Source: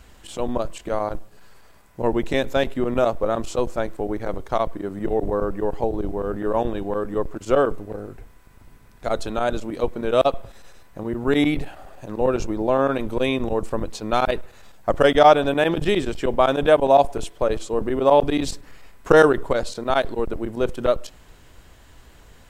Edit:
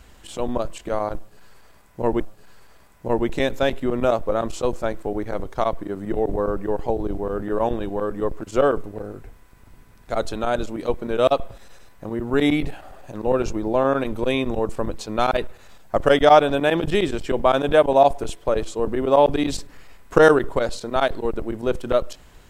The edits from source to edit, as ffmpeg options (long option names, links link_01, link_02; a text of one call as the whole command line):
ffmpeg -i in.wav -filter_complex "[0:a]asplit=2[link_01][link_02];[link_01]atrim=end=2.202[link_03];[link_02]atrim=start=1.138[link_04];[link_03][link_04]acrossfade=duration=0.004:curve1=hsin:curve2=hsin" out.wav